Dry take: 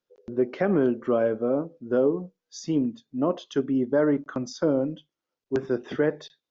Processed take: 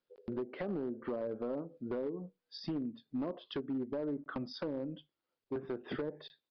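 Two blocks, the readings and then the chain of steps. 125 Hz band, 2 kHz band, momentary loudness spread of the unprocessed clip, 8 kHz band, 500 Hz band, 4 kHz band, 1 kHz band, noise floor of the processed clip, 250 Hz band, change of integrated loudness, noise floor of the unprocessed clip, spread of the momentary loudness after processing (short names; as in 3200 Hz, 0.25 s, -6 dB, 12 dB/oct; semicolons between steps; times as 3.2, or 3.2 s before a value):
-12.5 dB, -13.5 dB, 10 LU, n/a, -14.5 dB, -5.5 dB, -12.5 dB, under -85 dBFS, -12.5 dB, -13.5 dB, under -85 dBFS, 5 LU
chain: treble ducked by the level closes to 690 Hz, closed at -18 dBFS; compressor 10:1, threshold -31 dBFS, peak gain reduction 14 dB; hard clip -29 dBFS, distortion -15 dB; downsampling 11025 Hz; gain -2 dB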